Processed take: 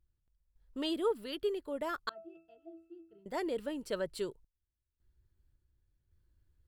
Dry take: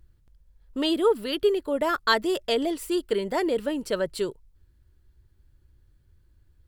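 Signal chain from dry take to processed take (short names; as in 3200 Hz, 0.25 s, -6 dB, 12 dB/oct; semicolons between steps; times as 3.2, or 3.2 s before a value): random-step tremolo 1.8 Hz, depth 90%; 2.09–3.26 octave resonator E, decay 0.35 s; gain -9 dB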